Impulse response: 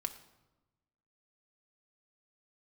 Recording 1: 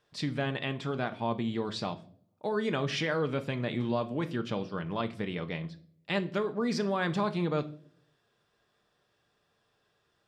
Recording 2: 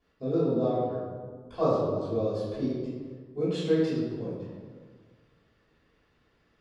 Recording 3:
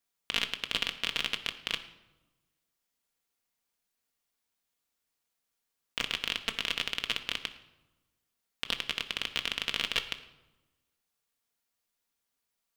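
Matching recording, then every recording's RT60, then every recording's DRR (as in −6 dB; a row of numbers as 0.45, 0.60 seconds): 3; non-exponential decay, 1.7 s, 1.1 s; 7.5, −18.0, 6.0 decibels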